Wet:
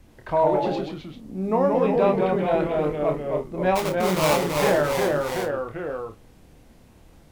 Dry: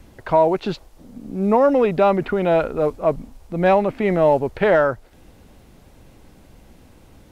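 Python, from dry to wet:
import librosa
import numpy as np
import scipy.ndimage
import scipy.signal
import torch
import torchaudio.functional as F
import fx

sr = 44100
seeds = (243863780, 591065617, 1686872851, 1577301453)

p1 = fx.notch(x, sr, hz=1400.0, q=20.0)
p2 = fx.sample_hold(p1, sr, seeds[0], rate_hz=1700.0, jitter_pct=20, at=(3.75, 4.37), fade=0.02)
p3 = fx.echo_pitch(p2, sr, ms=85, semitones=-1, count=3, db_per_echo=-3.0)
p4 = p3 + fx.room_early_taps(p3, sr, ms=(27, 52), db=(-6.5, -15.5), dry=0)
y = p4 * 10.0 ** (-7.0 / 20.0)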